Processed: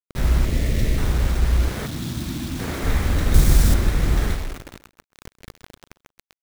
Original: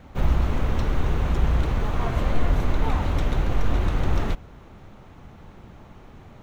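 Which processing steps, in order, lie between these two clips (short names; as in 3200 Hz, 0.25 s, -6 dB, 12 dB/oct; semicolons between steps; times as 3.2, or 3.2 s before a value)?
minimum comb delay 0.52 ms; on a send at -7.5 dB: reverb RT60 0.85 s, pre-delay 29 ms; 1.86–2.59 on the sum: spectral delete 360–3200 Hz; vocal rider 0.5 s; 0.45–0.98 brick-wall FIR band-stop 700–1700 Hz; requantised 6-bit, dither none; 1.68–2.84 HPF 130 Hz 12 dB/oct; 3.34–3.74 tone controls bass +6 dB, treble +12 dB; feedback echo 0.132 s, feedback 21%, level -17 dB; gain +2 dB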